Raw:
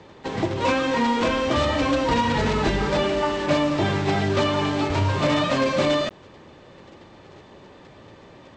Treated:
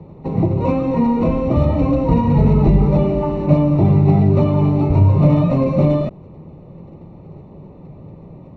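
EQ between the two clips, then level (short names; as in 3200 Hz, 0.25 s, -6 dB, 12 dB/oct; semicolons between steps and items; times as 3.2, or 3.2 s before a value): running mean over 27 samples; low shelf 90 Hz +11.5 dB; bell 160 Hz +11.5 dB 0.6 oct; +4.0 dB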